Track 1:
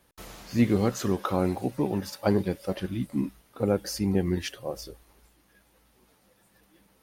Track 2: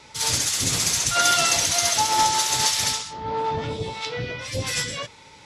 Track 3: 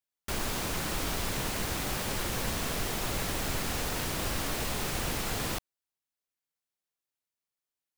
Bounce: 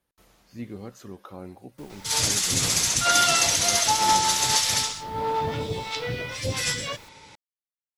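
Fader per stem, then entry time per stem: -14.5 dB, -0.5 dB, -19.5 dB; 0.00 s, 1.90 s, 1.50 s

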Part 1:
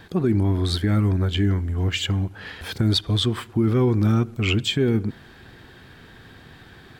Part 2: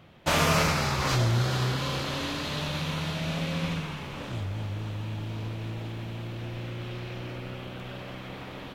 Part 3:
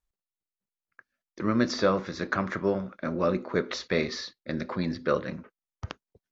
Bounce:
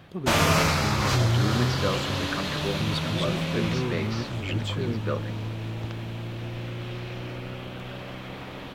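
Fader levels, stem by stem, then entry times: -11.0 dB, +2.0 dB, -5.0 dB; 0.00 s, 0.00 s, 0.00 s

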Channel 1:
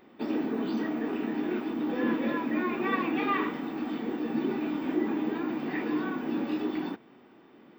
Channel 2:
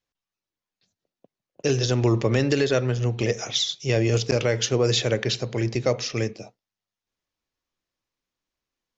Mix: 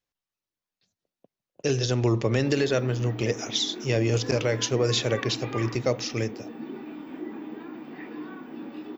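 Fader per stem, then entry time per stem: -8.0 dB, -2.5 dB; 2.25 s, 0.00 s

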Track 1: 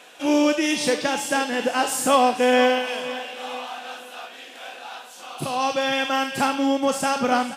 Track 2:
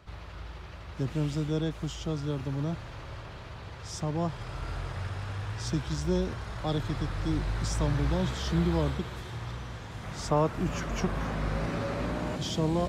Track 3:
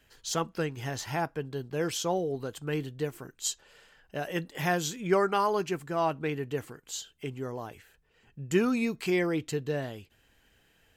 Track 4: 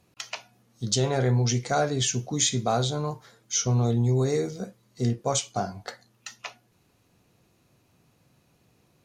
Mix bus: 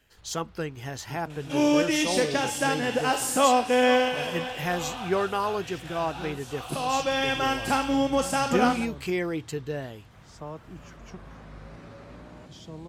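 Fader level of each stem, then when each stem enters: -3.0 dB, -13.5 dB, -1.0 dB, mute; 1.30 s, 0.10 s, 0.00 s, mute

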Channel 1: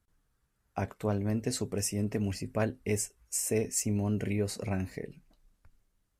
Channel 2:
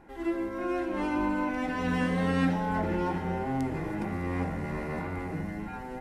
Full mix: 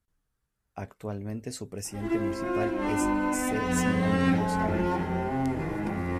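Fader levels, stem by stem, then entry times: -4.5 dB, +2.0 dB; 0.00 s, 1.85 s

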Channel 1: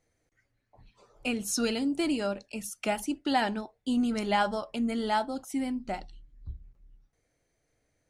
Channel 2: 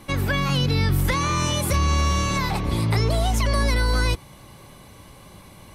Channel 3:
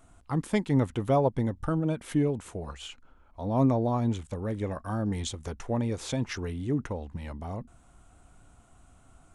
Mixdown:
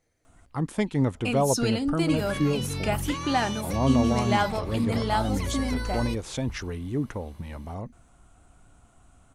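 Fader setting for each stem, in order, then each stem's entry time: +1.5 dB, -11.0 dB, +0.5 dB; 0.00 s, 2.00 s, 0.25 s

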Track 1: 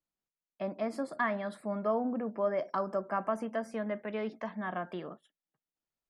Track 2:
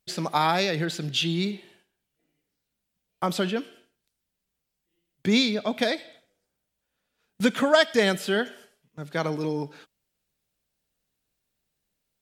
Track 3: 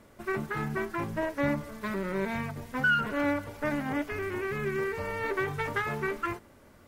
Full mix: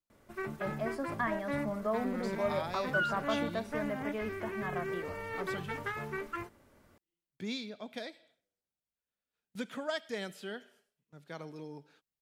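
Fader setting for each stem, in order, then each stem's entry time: -2.5 dB, -17.0 dB, -7.0 dB; 0.00 s, 2.15 s, 0.10 s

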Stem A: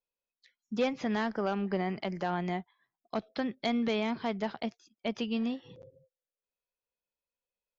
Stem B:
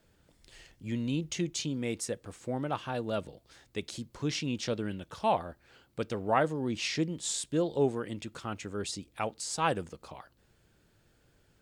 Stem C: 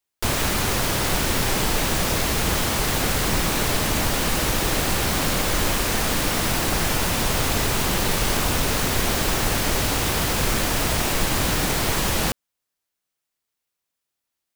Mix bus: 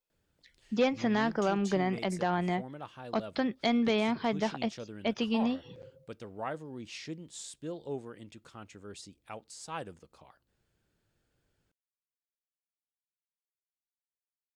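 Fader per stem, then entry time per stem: +2.5 dB, -10.5 dB, mute; 0.00 s, 0.10 s, mute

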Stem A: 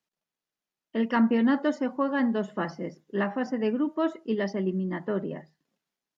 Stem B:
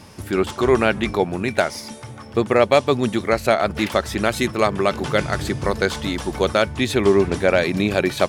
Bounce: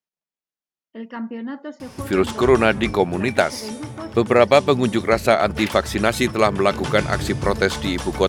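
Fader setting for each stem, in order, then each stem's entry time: -7.5 dB, +1.5 dB; 0.00 s, 1.80 s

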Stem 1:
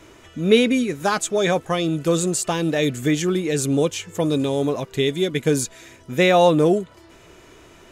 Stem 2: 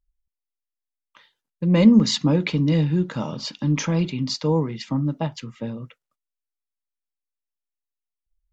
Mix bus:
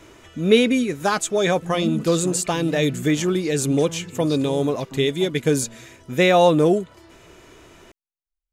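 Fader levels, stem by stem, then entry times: 0.0 dB, -13.5 dB; 0.00 s, 0.00 s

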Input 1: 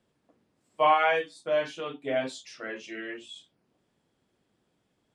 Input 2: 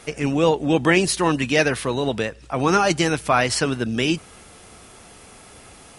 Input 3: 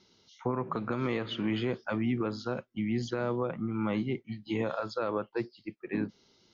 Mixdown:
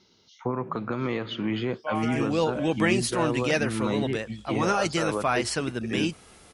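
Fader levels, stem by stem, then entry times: -11.0 dB, -7.0 dB, +2.5 dB; 1.05 s, 1.95 s, 0.00 s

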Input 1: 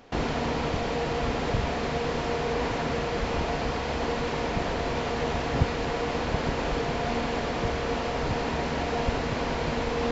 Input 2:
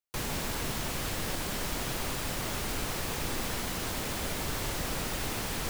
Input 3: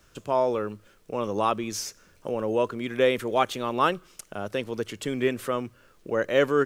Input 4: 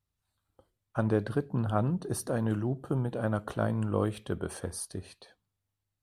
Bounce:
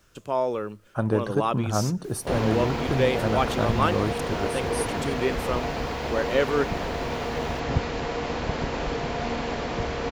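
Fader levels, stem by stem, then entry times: -0.5 dB, -18.5 dB, -1.5 dB, +3.0 dB; 2.15 s, 1.90 s, 0.00 s, 0.00 s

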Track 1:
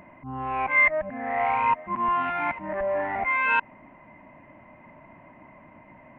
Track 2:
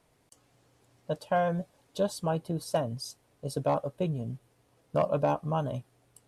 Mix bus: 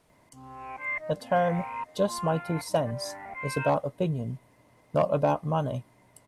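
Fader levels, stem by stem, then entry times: -13.0 dB, +2.5 dB; 0.10 s, 0.00 s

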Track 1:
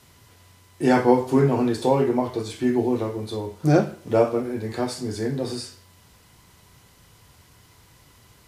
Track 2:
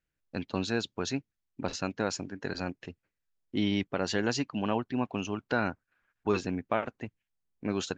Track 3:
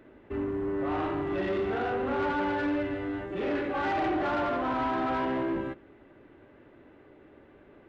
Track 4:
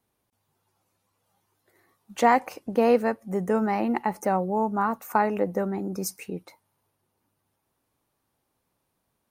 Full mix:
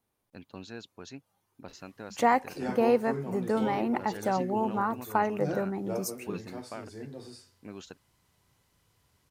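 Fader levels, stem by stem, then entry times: -16.5 dB, -12.5 dB, mute, -4.0 dB; 1.75 s, 0.00 s, mute, 0.00 s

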